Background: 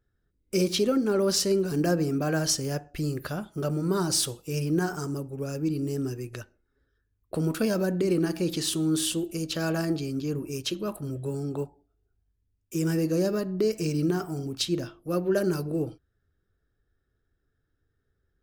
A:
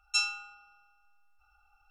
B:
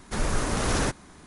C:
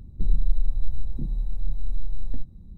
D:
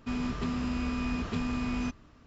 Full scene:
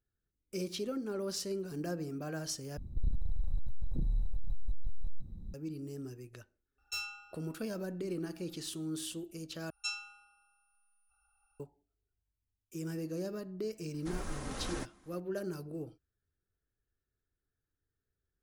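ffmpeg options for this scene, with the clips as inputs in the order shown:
ffmpeg -i bed.wav -i cue0.wav -i cue1.wav -i cue2.wav -filter_complex "[1:a]asplit=2[link_01][link_02];[0:a]volume=-13dB[link_03];[3:a]asoftclip=type=tanh:threshold=-24dB[link_04];[link_01]asoftclip=type=tanh:threshold=-26dB[link_05];[link_02]aeval=exprs='val(0)+0.000501*sin(2*PI*9600*n/s)':channel_layout=same[link_06];[2:a]aecho=1:1:3.8:0.36[link_07];[link_03]asplit=3[link_08][link_09][link_10];[link_08]atrim=end=2.774[link_11];[link_04]atrim=end=2.77,asetpts=PTS-STARTPTS,volume=-1dB[link_12];[link_09]atrim=start=5.536:end=9.704[link_13];[link_06]atrim=end=1.9,asetpts=PTS-STARTPTS,volume=-9.5dB[link_14];[link_10]atrim=start=11.596[link_15];[link_05]atrim=end=1.9,asetpts=PTS-STARTPTS,volume=-6.5dB,afade=type=in:duration=0.004:curve=hsin,afade=type=out:start_time=1.896:duration=0.004:curve=hsin,adelay=6780[link_16];[link_07]atrim=end=1.26,asetpts=PTS-STARTPTS,volume=-15.5dB,afade=type=in:duration=0.004:curve=hsin,afade=type=out:start_time=1.256:duration=0.004:curve=hsin,adelay=13940[link_17];[link_11][link_12]acrossfade=duration=0.004:curve1=hsin:curve2=hsin[link_18];[link_18][link_13]acrossfade=duration=0.004:curve1=hsin:curve2=hsin[link_19];[link_19][link_14]acrossfade=duration=0.004:curve1=hsin:curve2=hsin[link_20];[link_20][link_15]acrossfade=duration=0.004:curve1=hsin:curve2=hsin[link_21];[link_21][link_16][link_17]amix=inputs=3:normalize=0" out.wav

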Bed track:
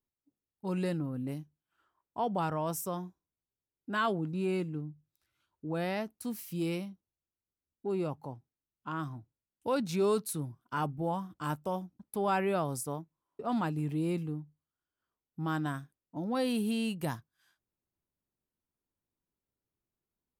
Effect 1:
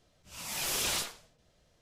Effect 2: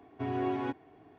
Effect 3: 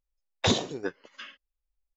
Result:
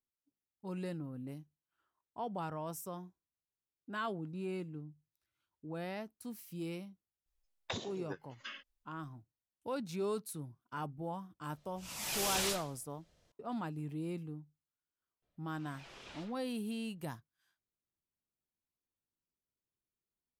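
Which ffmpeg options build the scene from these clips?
ffmpeg -i bed.wav -i cue0.wav -i cue1.wav -i cue2.wav -filter_complex "[1:a]asplit=2[link_01][link_02];[0:a]volume=-8dB[link_03];[3:a]acompressor=threshold=-36dB:ratio=8:attack=4:release=875:knee=1:detection=peak[link_04];[link_02]lowpass=3000[link_05];[link_04]atrim=end=1.96,asetpts=PTS-STARTPTS,afade=type=in:duration=0.004:curve=hsin,afade=type=out:start_time=1.956:duration=0.004:curve=hsin,adelay=7260[link_06];[link_01]atrim=end=1.81,asetpts=PTS-STARTPTS,volume=-3dB,afade=type=in:duration=0.004:curve=hsin,afade=type=out:start_time=1.806:duration=0.004:curve=hsin,adelay=11510[link_07];[link_05]atrim=end=1.81,asetpts=PTS-STARTPTS,volume=-16dB,afade=type=in:duration=0.004:curve=hsin,afade=type=out:start_time=1.806:duration=0.004:curve=hsin,adelay=15220[link_08];[link_03][link_06][link_07][link_08]amix=inputs=4:normalize=0" out.wav

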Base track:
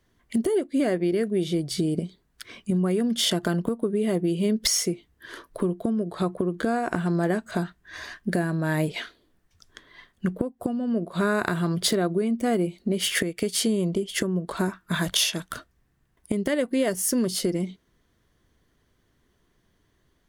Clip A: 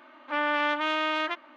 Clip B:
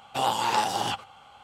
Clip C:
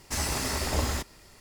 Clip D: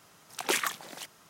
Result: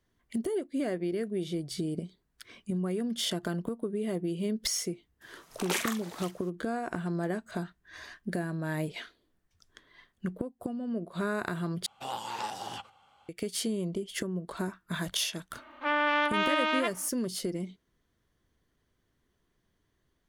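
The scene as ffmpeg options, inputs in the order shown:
ffmpeg -i bed.wav -i cue0.wav -i cue1.wav -i cue2.wav -i cue3.wav -filter_complex "[0:a]volume=-8dB[link_01];[4:a]asplit=2[link_02][link_03];[link_03]adelay=44,volume=-6.5dB[link_04];[link_02][link_04]amix=inputs=2:normalize=0[link_05];[link_01]asplit=2[link_06][link_07];[link_06]atrim=end=11.864[link_08];[2:a]atrim=end=1.43,asetpts=PTS-STARTPTS,volume=-11.5dB[link_09];[link_07]atrim=start=13.286[link_10];[link_05]atrim=end=1.29,asetpts=PTS-STARTPTS,volume=-3.5dB,afade=type=in:duration=0.004:curve=hsin,afade=type=out:start_time=1.286:duration=0.004:curve=hsin,adelay=229761S[link_11];[1:a]atrim=end=1.56,asetpts=PTS-STARTPTS,volume=-0.5dB,afade=type=in:duration=0.004:curve=hsin,afade=type=out:start_time=1.556:duration=0.004:curve=hsin,adelay=15530[link_12];[link_08][link_09]acrossfade=duration=0.004:curve1=hsin:curve2=hsin[link_13];[link_13][link_10]acrossfade=duration=0.004:curve1=hsin:curve2=hsin[link_14];[link_14][link_11][link_12]amix=inputs=3:normalize=0" out.wav

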